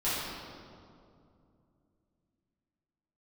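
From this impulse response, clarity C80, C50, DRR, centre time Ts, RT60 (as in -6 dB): -0.5 dB, -3.0 dB, -12.5 dB, 0.135 s, 2.5 s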